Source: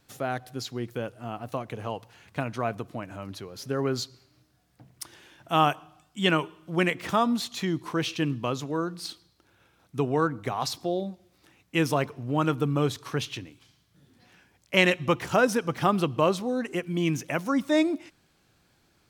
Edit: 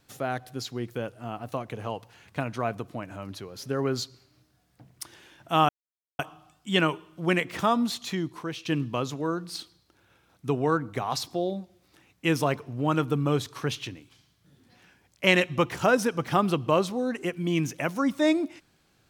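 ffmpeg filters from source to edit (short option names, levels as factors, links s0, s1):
-filter_complex "[0:a]asplit=3[s0][s1][s2];[s0]atrim=end=5.69,asetpts=PTS-STARTPTS,afade=t=out:st=5.686:d=0.004:c=hsin,apad=pad_dur=0.5[s3];[s1]atrim=start=5.69:end=8.15,asetpts=PTS-STARTPTS,afade=t=in:d=0.004:c=hsin,afade=t=out:st=1.84:d=0.62:silence=0.298538[s4];[s2]atrim=start=8.15,asetpts=PTS-STARTPTS,afade=t=in:d=0.004:c=hsin:silence=0.298538[s5];[s3][s4][s5]concat=n=3:v=0:a=1"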